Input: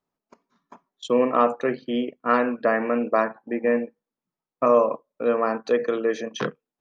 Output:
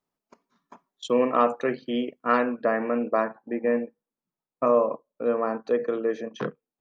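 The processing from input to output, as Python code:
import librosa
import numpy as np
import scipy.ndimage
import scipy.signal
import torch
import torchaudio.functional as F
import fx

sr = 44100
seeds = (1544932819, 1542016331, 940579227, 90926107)

y = fx.high_shelf(x, sr, hz=2100.0, db=fx.steps((0.0, 2.0), (2.43, -6.5), (4.7, -11.5)))
y = F.gain(torch.from_numpy(y), -2.0).numpy()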